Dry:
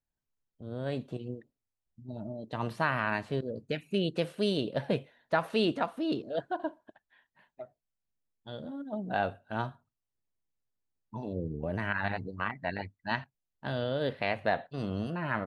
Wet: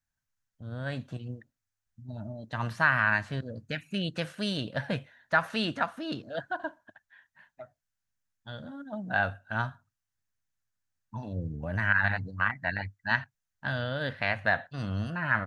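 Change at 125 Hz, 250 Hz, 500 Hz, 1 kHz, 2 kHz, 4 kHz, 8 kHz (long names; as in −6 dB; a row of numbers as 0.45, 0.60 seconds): +3.0 dB, −2.0 dB, −4.0 dB, +1.5 dB, +8.5 dB, +2.0 dB, can't be measured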